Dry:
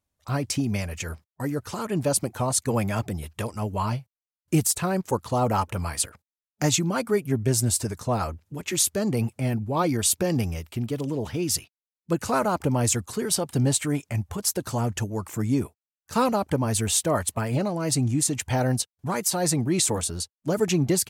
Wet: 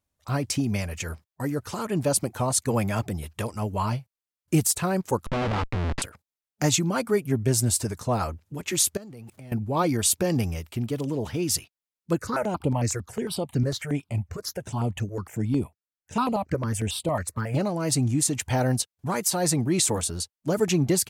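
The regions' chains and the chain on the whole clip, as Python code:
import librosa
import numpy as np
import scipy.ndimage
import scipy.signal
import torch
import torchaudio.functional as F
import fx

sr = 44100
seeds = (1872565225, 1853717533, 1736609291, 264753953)

y = fx.chain(x, sr, fx.schmitt(flips_db=-28.0),
    fx.lowpass(hz=3300.0, slope=12), at=(5.26, 6.02))
y = fx.chain(y, sr, fx.zero_step(step_db=-42.5),
    fx.level_steps(step_db=21), at=(8.97, 9.52))
y = fx.chain(y, sr, fx.high_shelf(hz=7700.0, db=-8.0),
    fx.phaser_held(hz=11.0, low_hz=830.0, high_hz=5800.0), at=(12.18, 17.55))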